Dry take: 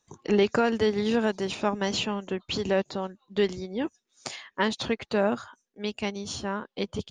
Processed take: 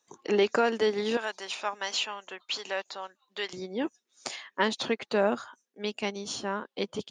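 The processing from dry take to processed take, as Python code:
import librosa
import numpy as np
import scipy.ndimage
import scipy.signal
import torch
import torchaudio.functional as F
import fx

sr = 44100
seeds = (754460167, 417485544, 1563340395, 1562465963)

y = fx.highpass(x, sr, hz=fx.steps((0.0, 310.0), (1.17, 900.0), (3.53, 230.0)), slope=12)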